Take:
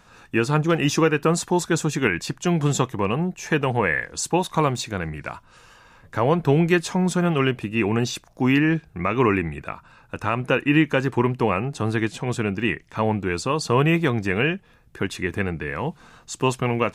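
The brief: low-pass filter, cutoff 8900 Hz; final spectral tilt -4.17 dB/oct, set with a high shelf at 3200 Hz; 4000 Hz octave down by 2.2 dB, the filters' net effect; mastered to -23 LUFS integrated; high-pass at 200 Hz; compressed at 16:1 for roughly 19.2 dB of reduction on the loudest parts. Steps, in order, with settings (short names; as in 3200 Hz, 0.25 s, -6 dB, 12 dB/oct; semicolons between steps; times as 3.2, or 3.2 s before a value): HPF 200 Hz; LPF 8900 Hz; high shelf 3200 Hz +5 dB; bell 4000 Hz -7 dB; compressor 16:1, threshold -34 dBFS; gain +16.5 dB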